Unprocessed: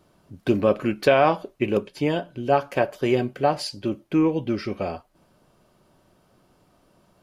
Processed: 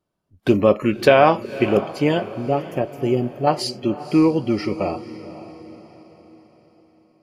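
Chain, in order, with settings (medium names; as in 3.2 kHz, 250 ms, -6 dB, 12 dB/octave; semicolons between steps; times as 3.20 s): 2.39–3.47 s: ten-band graphic EQ 500 Hz -4 dB, 1 kHz -8 dB, 2 kHz -11 dB, 4 kHz -5 dB, 8 kHz -6 dB; spectral noise reduction 23 dB; echo that smears into a reverb 527 ms, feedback 45%, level -14.5 dB; trim +4.5 dB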